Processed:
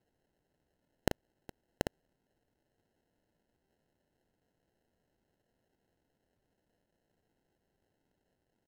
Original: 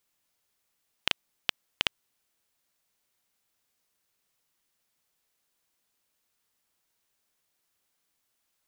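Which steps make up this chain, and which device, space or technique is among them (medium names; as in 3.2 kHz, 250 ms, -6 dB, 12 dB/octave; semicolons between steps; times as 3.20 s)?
crushed at another speed (playback speed 1.25×; sample-and-hold 30×; playback speed 0.8×); trim -1 dB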